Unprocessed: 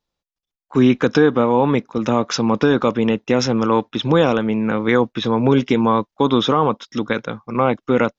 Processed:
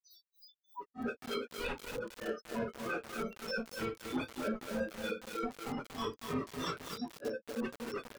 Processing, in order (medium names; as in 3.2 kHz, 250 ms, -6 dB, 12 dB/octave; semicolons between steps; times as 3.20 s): zero-crossing glitches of -21 dBFS; in parallel at +1.5 dB: compression 12:1, threshold -23 dBFS, peak gain reduction 15 dB; on the sum: high-pass 370 Hz 12 dB/octave; echo from a far wall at 54 m, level -22 dB; loudest bins only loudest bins 1; treble shelf 2.9 kHz -2.5 dB; wavefolder -30.5 dBFS; reverberation RT60 0.55 s, pre-delay 47 ms; peak limiter -20 dBFS, peak gain reduction 5.5 dB; granulator 236 ms, grains 3.2 per s, spray 12 ms, pitch spread up and down by 0 st; bit-crushed delay 233 ms, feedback 55%, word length 6-bit, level -3.5 dB; trim -5.5 dB